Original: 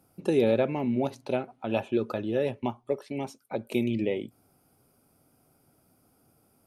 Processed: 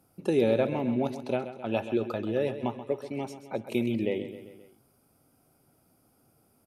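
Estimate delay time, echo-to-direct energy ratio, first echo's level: 132 ms, −10.5 dB, −12.0 dB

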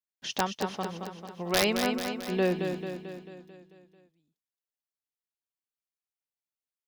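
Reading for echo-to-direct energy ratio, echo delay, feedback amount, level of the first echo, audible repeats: −5.0 dB, 221 ms, 57%, −6.5 dB, 6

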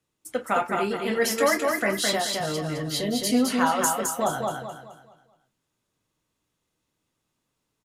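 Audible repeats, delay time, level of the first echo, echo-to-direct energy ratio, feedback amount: 4, 213 ms, −3.5 dB, −3.0 dB, 36%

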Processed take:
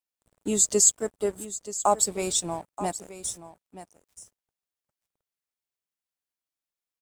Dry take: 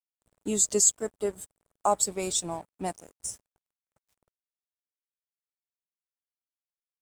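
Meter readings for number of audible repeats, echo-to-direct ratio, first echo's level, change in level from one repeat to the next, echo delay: 1, −14.0 dB, −14.0 dB, repeats not evenly spaced, 928 ms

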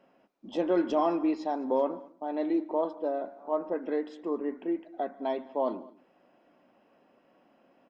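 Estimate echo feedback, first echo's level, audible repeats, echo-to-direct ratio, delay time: repeats not evenly spaced, −24.0 dB, 2, −20.0 dB, 144 ms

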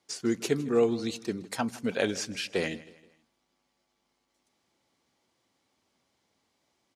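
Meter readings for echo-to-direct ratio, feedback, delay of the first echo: −18.0 dB, 42%, 159 ms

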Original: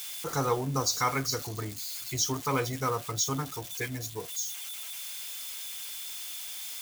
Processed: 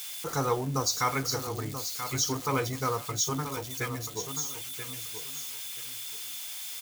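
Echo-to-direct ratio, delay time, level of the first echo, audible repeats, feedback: −9.5 dB, 983 ms, −9.5 dB, 2, 22%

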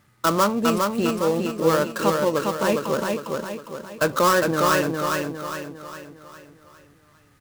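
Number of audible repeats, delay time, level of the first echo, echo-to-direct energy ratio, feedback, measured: 5, 407 ms, −3.5 dB, −2.5 dB, 46%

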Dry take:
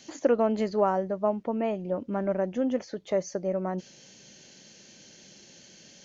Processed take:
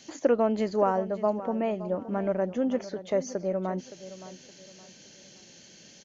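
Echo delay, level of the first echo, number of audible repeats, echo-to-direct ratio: 568 ms, −14.5 dB, 3, −14.0 dB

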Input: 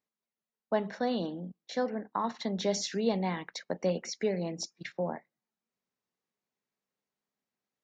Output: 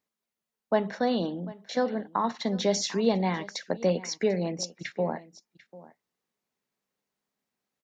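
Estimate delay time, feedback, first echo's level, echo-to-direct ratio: 744 ms, repeats not evenly spaced, −19.5 dB, −19.5 dB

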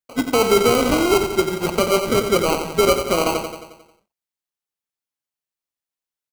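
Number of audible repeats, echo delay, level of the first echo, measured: 6, 89 ms, −7.5 dB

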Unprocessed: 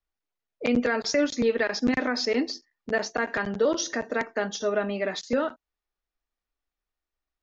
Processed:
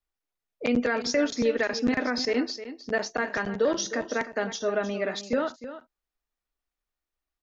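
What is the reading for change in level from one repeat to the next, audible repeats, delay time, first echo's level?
repeats not evenly spaced, 1, 309 ms, −13.0 dB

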